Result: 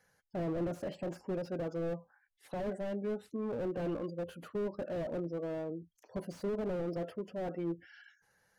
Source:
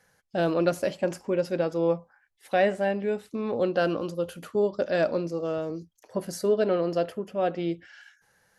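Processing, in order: spectral gate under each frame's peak -25 dB strong; slew limiter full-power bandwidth 20 Hz; gain -6.5 dB

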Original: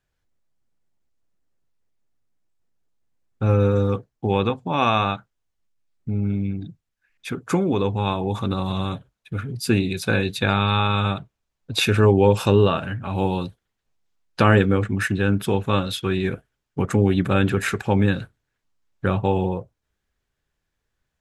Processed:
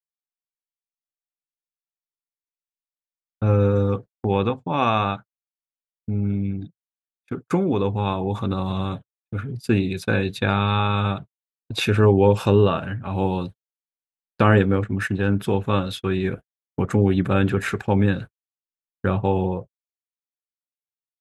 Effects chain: 14.62–15.35 transient shaper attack -2 dB, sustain -6 dB; high shelf 2900 Hz -6.5 dB; gate -32 dBFS, range -47 dB

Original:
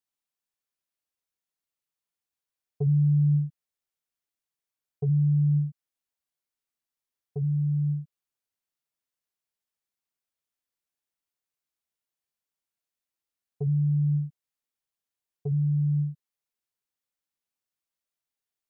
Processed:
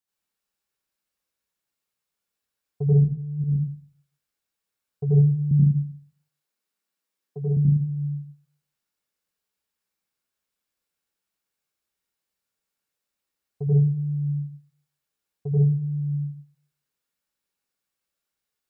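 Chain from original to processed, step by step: 2.93–3.44 negative-ratio compressor -25 dBFS, ratio -0.5; 5.51–7.57 HPF 150 Hz 24 dB/oct; reverb RT60 0.40 s, pre-delay 79 ms, DRR -6 dB

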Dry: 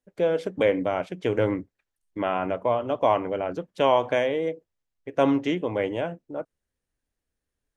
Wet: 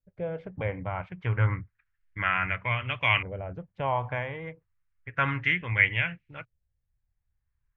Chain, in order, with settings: LFO low-pass saw up 0.31 Hz 560–2700 Hz; EQ curve 120 Hz 0 dB, 290 Hz -26 dB, 660 Hz -25 dB, 2200 Hz +3 dB, 3700 Hz -1 dB; gain +8.5 dB

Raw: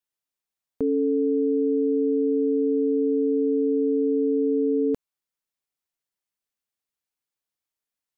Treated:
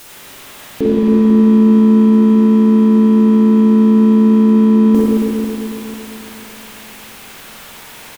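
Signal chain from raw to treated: zero-crossing step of -38.5 dBFS; harmoniser -4 st -5 dB; spring tank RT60 3.1 s, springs 45/55 ms, chirp 80 ms, DRR -7.5 dB; gain +6.5 dB

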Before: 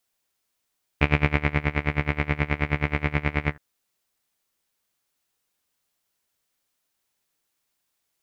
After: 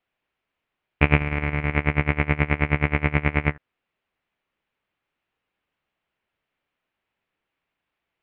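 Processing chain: Chebyshev low-pass 2700 Hz, order 3; 1.16–1.76 negative-ratio compressor -26 dBFS, ratio -1; gain +3.5 dB

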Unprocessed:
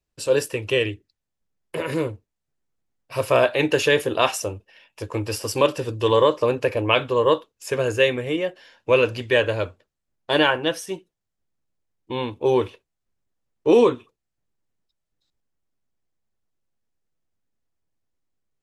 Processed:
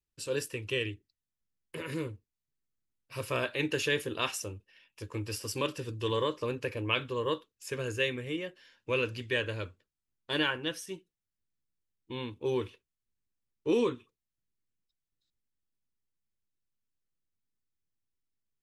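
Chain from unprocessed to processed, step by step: bell 700 Hz -12.5 dB 0.99 oct; gain -8 dB

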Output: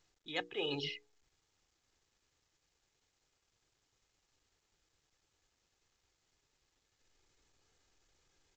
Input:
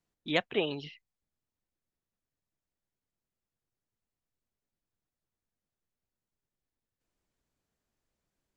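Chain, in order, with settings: high shelf 2900 Hz +7.5 dB; notches 60/120/180/240/300/360/420/480 Hz; comb 2.4 ms, depth 61%; reverse; compressor 6:1, threshold -39 dBFS, peak gain reduction 18.5 dB; reverse; gain +3 dB; µ-law 128 kbps 16000 Hz

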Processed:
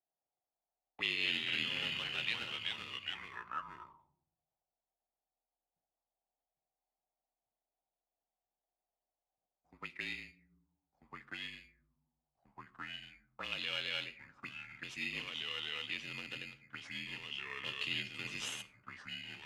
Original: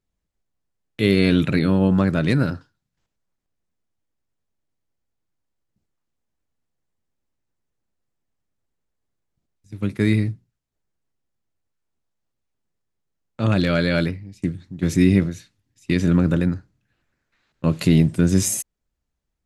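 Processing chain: 1.97–2.39 tilt shelf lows -6 dB; echoes that change speed 0.1 s, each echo -2 st, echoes 3; in parallel at -3.5 dB: sample-and-hold 19×; on the sum: frequency shift -38 Hz; on a send at -14.5 dB: reverb RT60 0.65 s, pre-delay 11 ms; on the sum: auto-wah 730–2900 Hz, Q 5.8, up, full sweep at -14.5 dBFS; gain -1.5 dB

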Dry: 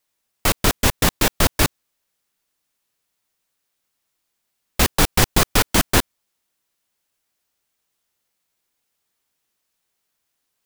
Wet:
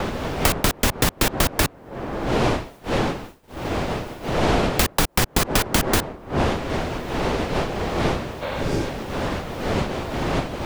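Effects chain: wind noise 630 Hz -29 dBFS; expander -43 dBFS; compressor, threshold -18 dBFS, peak gain reduction 8 dB; spectral repair 8.45–8.84, 490–4500 Hz after; three-band squash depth 70%; gain +4 dB

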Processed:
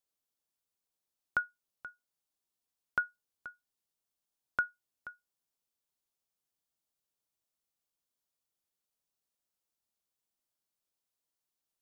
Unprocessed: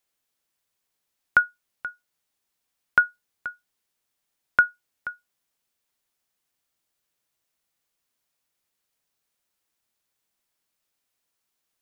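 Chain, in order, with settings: bell 2000 Hz -7 dB 1.1 oct; gain -9 dB

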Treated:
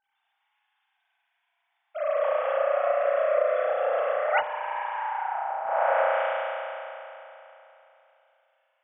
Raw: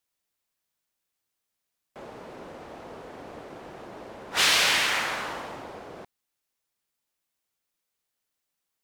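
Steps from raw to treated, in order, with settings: sine-wave speech; compressor 1.5:1, threshold -33 dBFS, peak gain reduction 5.5 dB; spring tank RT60 3.1 s, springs 33 ms, chirp 45 ms, DRR -7 dB; treble ducked by the level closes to 410 Hz, closed at -21.5 dBFS; gain +8 dB

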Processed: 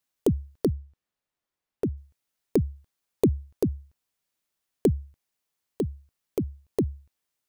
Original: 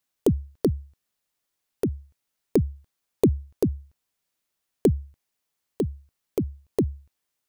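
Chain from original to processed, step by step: 0.7–1.96 high shelf 4700 Hz -> 3000 Hz -11.5 dB; gain -2 dB

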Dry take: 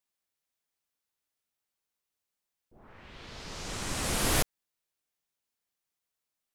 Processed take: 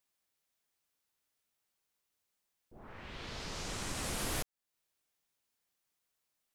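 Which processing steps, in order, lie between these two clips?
compressor 2.5:1, threshold -43 dBFS, peak gain reduction 14 dB; gain +3 dB

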